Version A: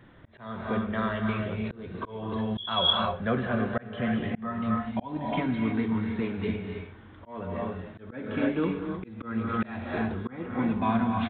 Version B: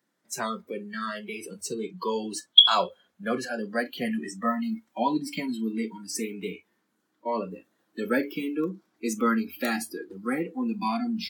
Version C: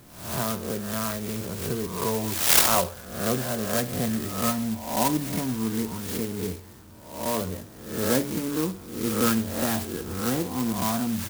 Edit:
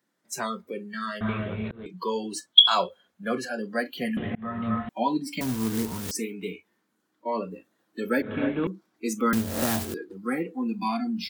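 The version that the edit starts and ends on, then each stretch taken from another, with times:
B
1.21–1.86 from A
4.17–4.89 from A
5.41–6.11 from C
8.22–8.67 from A
9.33–9.94 from C

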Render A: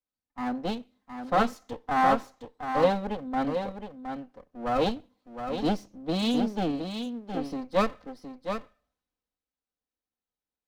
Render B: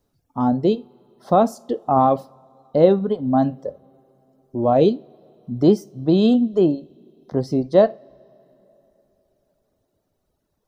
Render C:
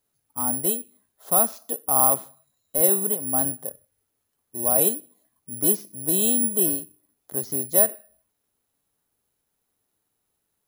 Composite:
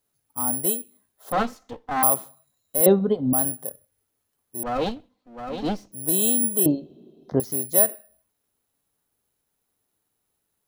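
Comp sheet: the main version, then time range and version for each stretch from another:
C
1.32–2.03 from A
2.86–3.33 from B
4.63–5.92 from A
6.66–7.4 from B

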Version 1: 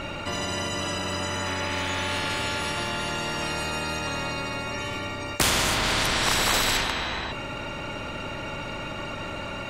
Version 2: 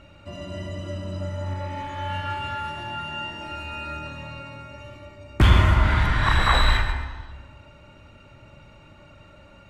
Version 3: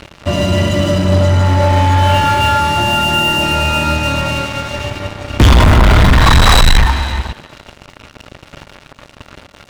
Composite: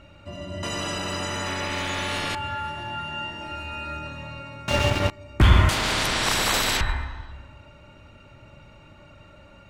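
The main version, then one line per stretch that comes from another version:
2
0.63–2.35 from 1
4.68–5.1 from 3
5.69–6.81 from 1

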